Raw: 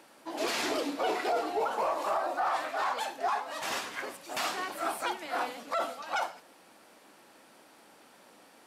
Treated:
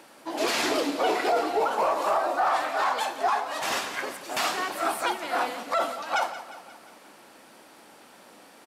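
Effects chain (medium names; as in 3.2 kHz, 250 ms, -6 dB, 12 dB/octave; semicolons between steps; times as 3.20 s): feedback delay 177 ms, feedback 56%, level -14 dB; trim +5.5 dB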